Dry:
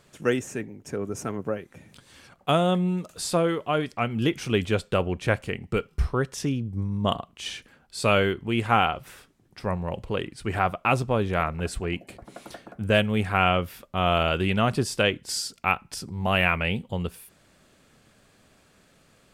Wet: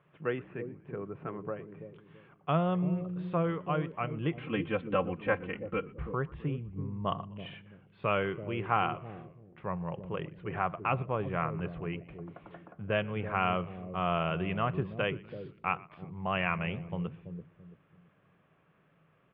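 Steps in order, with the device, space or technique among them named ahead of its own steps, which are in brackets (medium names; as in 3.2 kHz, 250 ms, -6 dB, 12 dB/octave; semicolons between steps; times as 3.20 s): steep low-pass 3.2 kHz 36 dB/octave; treble shelf 5.4 kHz -9 dB; 4.37–5.94 s: comb 3.8 ms, depth 98%; frequency-shifting delay pedal into a guitar cabinet (frequency-shifting echo 120 ms, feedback 54%, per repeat -64 Hz, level -23 dB; cabinet simulation 75–3400 Hz, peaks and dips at 78 Hz -9 dB, 160 Hz +9 dB, 230 Hz -8 dB, 1.1 kHz +6 dB); bucket-brigade echo 333 ms, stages 1024, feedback 31%, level -7 dB; trim -8.5 dB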